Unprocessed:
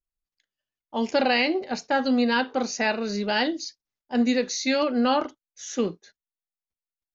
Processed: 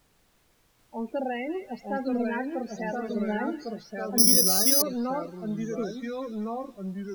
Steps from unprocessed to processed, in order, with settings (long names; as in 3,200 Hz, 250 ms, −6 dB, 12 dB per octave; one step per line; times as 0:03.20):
high-shelf EQ 2,400 Hz −9.5 dB
in parallel at −4 dB: hard clipping −25.5 dBFS, distortion −8 dB
on the sum: spectral peaks only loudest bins 16
background noise pink −56 dBFS
delay with pitch and tempo change per echo 789 ms, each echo −2 semitones, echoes 2
on a send: delay with a high-pass on its return 188 ms, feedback 55%, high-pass 2,500 Hz, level −9 dB
0:04.18–0:04.82: on the sum: bad sample-rate conversion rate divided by 8×, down filtered, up zero stuff
level −9.5 dB